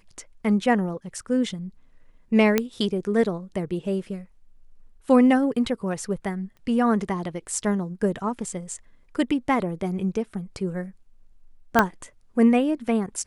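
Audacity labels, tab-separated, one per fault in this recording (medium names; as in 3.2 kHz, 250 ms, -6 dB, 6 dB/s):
2.580000	2.580000	pop -6 dBFS
6.570000	6.570000	pop -37 dBFS
11.790000	11.790000	pop -3 dBFS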